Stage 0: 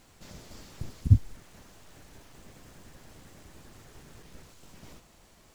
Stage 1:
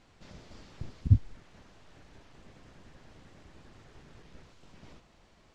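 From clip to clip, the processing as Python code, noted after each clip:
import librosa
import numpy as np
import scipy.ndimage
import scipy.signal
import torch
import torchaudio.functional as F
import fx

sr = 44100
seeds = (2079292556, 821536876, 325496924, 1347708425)

y = scipy.signal.sosfilt(scipy.signal.butter(2, 4500.0, 'lowpass', fs=sr, output='sos'), x)
y = y * 10.0 ** (-2.5 / 20.0)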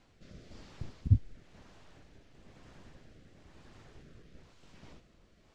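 y = fx.rotary(x, sr, hz=1.0)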